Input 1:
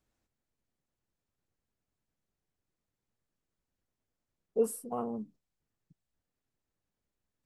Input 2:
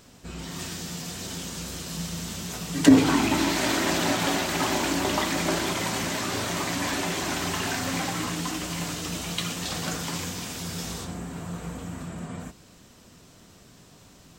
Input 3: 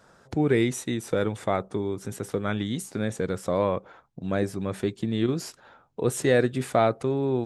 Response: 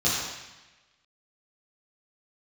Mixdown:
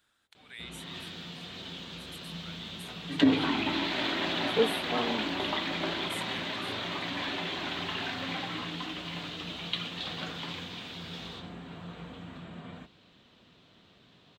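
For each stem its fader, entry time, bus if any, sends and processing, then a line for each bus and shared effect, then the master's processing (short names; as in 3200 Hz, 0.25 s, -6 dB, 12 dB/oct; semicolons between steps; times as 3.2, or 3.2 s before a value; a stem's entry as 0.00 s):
+2.5 dB, 0.00 s, no send, dry
-7.0 dB, 0.35 s, no send, resonant high shelf 6800 Hz -10.5 dB, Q 1.5
-2.0 dB, 0.00 s, no send, HPF 1100 Hz; differentiator; tremolo saw down 0.54 Hz, depth 85%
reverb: off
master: HPF 120 Hz 6 dB/oct; resonant high shelf 4400 Hz -7 dB, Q 3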